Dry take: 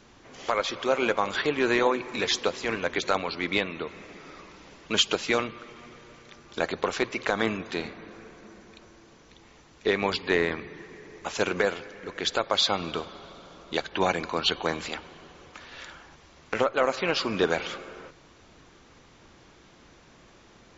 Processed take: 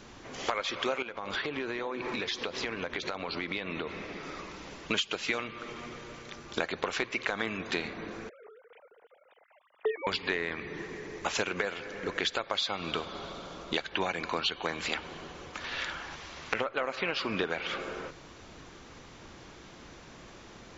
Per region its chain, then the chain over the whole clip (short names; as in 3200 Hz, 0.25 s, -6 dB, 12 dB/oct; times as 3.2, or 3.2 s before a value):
1.02–4.23 LPF 5700 Hz 24 dB/oct + compressor 16:1, threshold -34 dBFS
8.29–10.07 sine-wave speech + high shelf 2500 Hz -9.5 dB + transient shaper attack +1 dB, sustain -4 dB
15.64–17.81 air absorption 78 m + mismatched tape noise reduction encoder only
whole clip: dynamic EQ 2300 Hz, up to +6 dB, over -40 dBFS, Q 0.78; compressor 10:1, threshold -32 dBFS; gain +4.5 dB